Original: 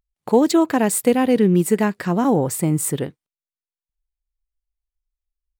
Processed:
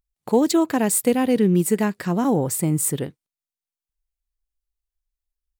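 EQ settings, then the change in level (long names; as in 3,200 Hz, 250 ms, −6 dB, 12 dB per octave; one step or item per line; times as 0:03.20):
low-shelf EQ 380 Hz +3.5 dB
high-shelf EQ 3,700 Hz +6.5 dB
−4.5 dB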